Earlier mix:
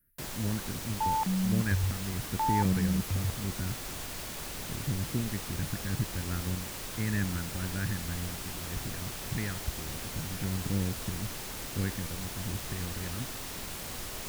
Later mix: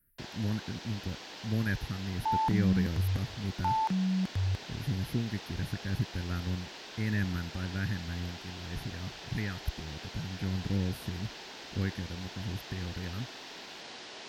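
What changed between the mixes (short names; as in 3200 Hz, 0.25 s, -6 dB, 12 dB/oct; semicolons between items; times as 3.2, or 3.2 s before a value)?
first sound: add speaker cabinet 360–5100 Hz, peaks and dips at 540 Hz -5 dB, 1200 Hz -8 dB, 2200 Hz -3 dB; second sound: entry +1.25 s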